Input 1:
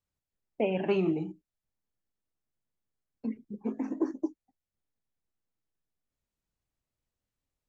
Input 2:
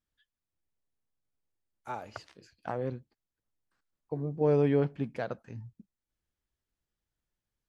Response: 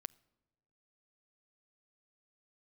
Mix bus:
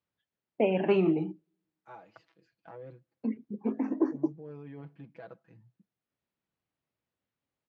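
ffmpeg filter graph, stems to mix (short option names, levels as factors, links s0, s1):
-filter_complex "[0:a]volume=1.26,asplit=2[s0][s1];[s1]volume=0.168[s2];[1:a]aecho=1:1:6.1:0.92,alimiter=limit=0.0631:level=0:latency=1:release=32,volume=0.2,asplit=2[s3][s4];[s4]volume=0.299[s5];[2:a]atrim=start_sample=2205[s6];[s2][s5]amix=inputs=2:normalize=0[s7];[s7][s6]afir=irnorm=-1:irlink=0[s8];[s0][s3][s8]amix=inputs=3:normalize=0,highpass=130,lowpass=3300"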